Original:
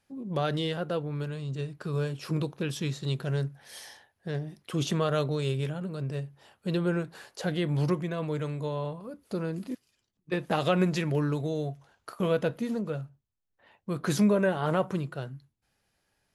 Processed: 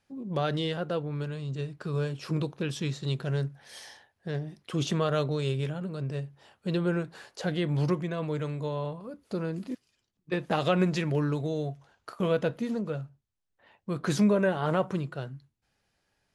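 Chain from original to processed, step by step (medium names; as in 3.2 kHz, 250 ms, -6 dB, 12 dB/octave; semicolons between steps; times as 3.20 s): low-pass 8.6 kHz 12 dB/octave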